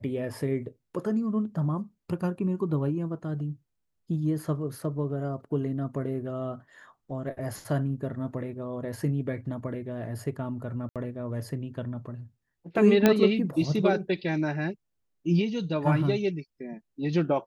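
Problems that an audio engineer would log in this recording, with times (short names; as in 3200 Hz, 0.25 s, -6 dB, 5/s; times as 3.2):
10.89–10.96 gap 67 ms
13.06 pop -6 dBFS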